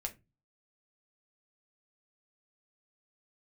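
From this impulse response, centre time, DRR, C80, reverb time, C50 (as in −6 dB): 7 ms, 3.0 dB, 26.0 dB, 0.25 s, 18.0 dB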